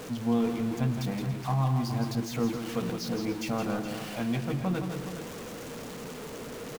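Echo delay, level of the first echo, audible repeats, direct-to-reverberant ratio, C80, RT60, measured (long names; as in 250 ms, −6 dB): 167 ms, −7.0 dB, 3, no reverb audible, no reverb audible, no reverb audible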